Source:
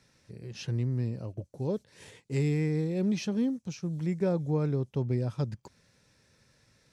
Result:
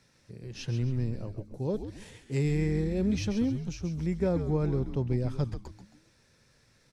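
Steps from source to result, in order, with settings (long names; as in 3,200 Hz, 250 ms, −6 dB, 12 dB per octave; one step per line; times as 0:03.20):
echo with shifted repeats 135 ms, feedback 40%, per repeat −110 Hz, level −8.5 dB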